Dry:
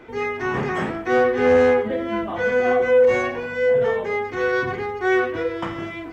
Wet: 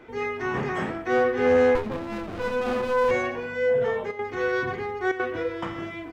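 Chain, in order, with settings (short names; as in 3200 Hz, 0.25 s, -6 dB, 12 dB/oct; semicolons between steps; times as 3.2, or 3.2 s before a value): 4.1–5.34 step gate "x.xx.xxxxxxxxxx" 179 bpm -12 dB; echo 0.119 s -18 dB; 1.75–3.11 running maximum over 33 samples; gain -4 dB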